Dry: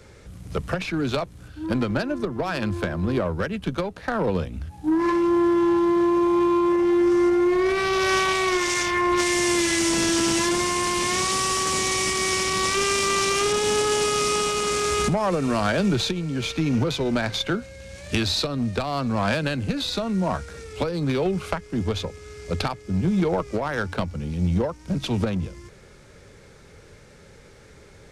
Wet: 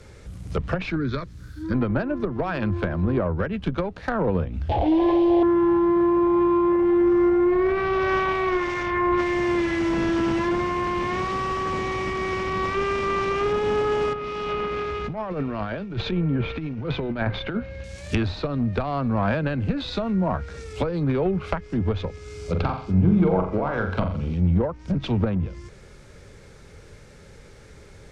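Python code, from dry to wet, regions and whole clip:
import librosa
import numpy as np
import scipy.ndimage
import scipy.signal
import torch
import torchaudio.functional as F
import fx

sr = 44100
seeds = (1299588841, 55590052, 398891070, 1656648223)

y = fx.chain(x, sr, fx.fixed_phaser(hz=2800.0, stages=6),
    fx.quant_dither(seeds[0], bits=10, dither='triangular'), at=(0.96, 1.74))
y = fx.chain(y, sr, fx.delta_mod(bps=64000, step_db=-24.0),
    fx.curve_eq(hz=(110.0, 150.0, 410.0, 710.0, 1300.0, 3300.0, 6100.0, 11000.0), db=(0, -13, 4, 13, -17, 6, -8, -21)),
    fx.env_flatten(amount_pct=50), at=(4.69, 5.43))
y = fx.chain(y, sr, fx.over_compress(threshold_db=-26.0, ratio=-0.5),
    fx.lowpass(hz=2800.0, slope=12), at=(14.13, 17.84))
y = fx.chain(y, sr, fx.notch(hz=1800.0, q=6.8),
    fx.room_flutter(wall_m=7.4, rt60_s=0.47), at=(22.23, 24.34))
y = fx.env_lowpass_down(y, sr, base_hz=1800.0, full_db=-21.0)
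y = fx.low_shelf(y, sr, hz=93.0, db=6.5)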